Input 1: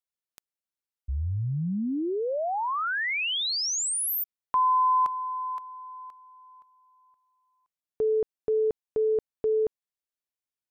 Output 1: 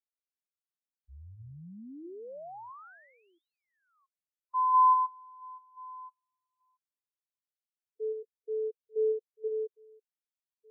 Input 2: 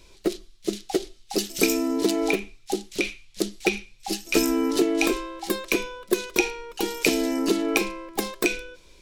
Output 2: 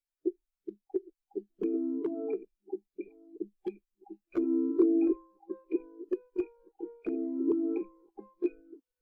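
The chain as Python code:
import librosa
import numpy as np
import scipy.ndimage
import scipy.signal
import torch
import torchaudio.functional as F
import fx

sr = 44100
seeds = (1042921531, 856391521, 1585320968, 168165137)

y = fx.reverse_delay(x, sr, ms=677, wet_db=-9.5)
y = scipy.signal.sosfilt(scipy.signal.butter(2, 1600.0, 'lowpass', fs=sr, output='sos'), y)
y = fx.low_shelf(y, sr, hz=310.0, db=-3.5)
y = (np.mod(10.0 ** (13.5 / 20.0) * y + 1.0, 2.0) - 1.0) / 10.0 ** (13.5 / 20.0)
y = fx.dmg_noise_colour(y, sr, seeds[0], colour='white', level_db=-40.0)
y = fx.spectral_expand(y, sr, expansion=2.5)
y = y * librosa.db_to_amplitude(-1.5)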